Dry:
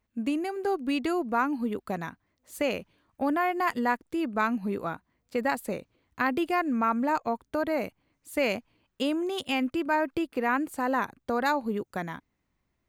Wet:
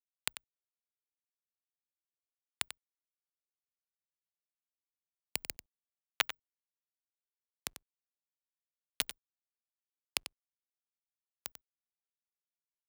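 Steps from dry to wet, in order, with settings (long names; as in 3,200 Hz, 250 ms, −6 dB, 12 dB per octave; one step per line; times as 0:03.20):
spectral magnitudes quantised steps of 15 dB
elliptic band-stop filter 200–970 Hz, stop band 40 dB
flat-topped bell 3,800 Hz +16 dB
downward compressor 8 to 1, threshold −35 dBFS, peak gain reduction 20.5 dB
bit reduction 4 bits
frequency shifter +21 Hz
log-companded quantiser 8 bits
on a send: single-tap delay 93 ms −11.5 dB
on the sum: level +8 dB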